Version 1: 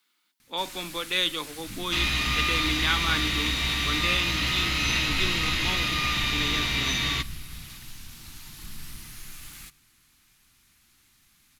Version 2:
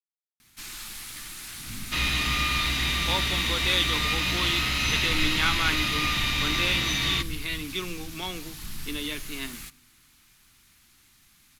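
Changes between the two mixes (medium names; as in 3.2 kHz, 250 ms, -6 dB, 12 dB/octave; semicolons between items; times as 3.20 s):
speech: entry +2.55 s; first sound +3.0 dB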